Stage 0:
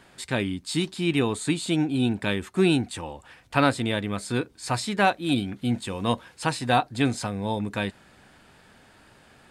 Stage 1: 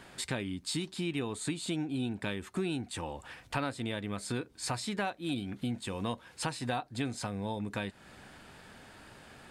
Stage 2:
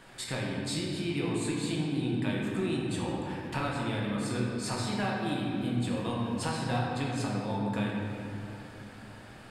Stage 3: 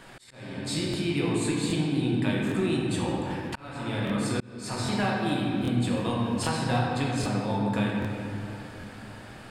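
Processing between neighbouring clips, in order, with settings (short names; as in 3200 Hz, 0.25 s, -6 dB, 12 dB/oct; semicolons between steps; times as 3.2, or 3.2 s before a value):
compressor 4:1, threshold -35 dBFS, peak gain reduction 16.5 dB; gain +1.5 dB
reverb RT60 3.0 s, pre-delay 6 ms, DRR -4 dB; gain -2.5 dB
auto swell 0.527 s; crackling interface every 0.79 s, samples 1024, repeat, from 0.89; gain +4.5 dB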